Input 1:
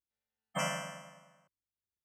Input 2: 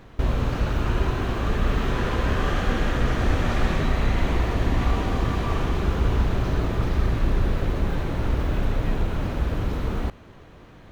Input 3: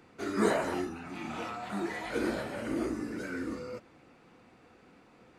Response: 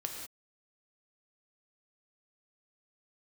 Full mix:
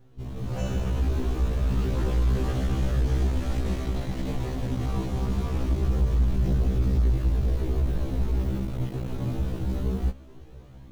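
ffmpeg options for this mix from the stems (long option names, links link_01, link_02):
-filter_complex "[0:a]lowpass=4400,volume=-1.5dB[link_01];[1:a]flanger=delay=7.8:depth=8.6:regen=-6:speed=0.22:shape=triangular,volume=26.5dB,asoftclip=hard,volume=-26.5dB,volume=-1.5dB[link_02];[link_01][link_02]amix=inputs=2:normalize=0,equalizer=frequency=1600:width=0.39:gain=-13.5,dynaudnorm=framelen=320:gausssize=3:maxgain=9.5dB,afftfilt=real='re*1.73*eq(mod(b,3),0)':imag='im*1.73*eq(mod(b,3),0)':win_size=2048:overlap=0.75"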